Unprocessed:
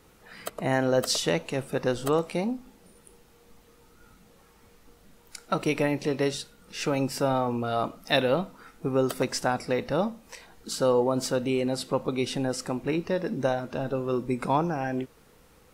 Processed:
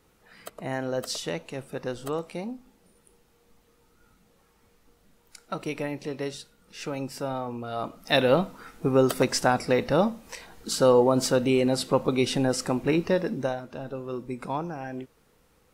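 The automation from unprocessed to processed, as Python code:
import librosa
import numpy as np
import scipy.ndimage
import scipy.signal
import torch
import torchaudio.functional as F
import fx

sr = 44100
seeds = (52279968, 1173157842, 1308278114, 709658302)

y = fx.gain(x, sr, db=fx.line((7.67, -6.0), (8.33, 4.0), (13.13, 4.0), (13.65, -6.0)))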